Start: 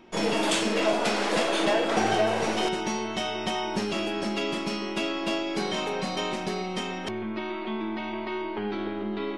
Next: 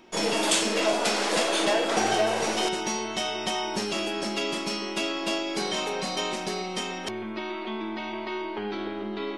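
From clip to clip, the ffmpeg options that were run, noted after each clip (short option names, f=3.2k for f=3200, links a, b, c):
-af "bass=f=250:g=-5,treble=f=4k:g=7"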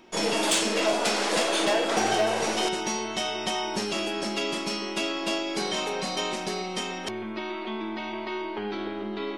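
-af "asoftclip=type=hard:threshold=-16dB"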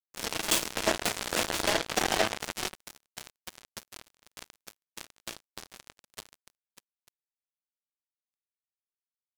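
-af "acrusher=bits=2:mix=0:aa=0.5,volume=3.5dB"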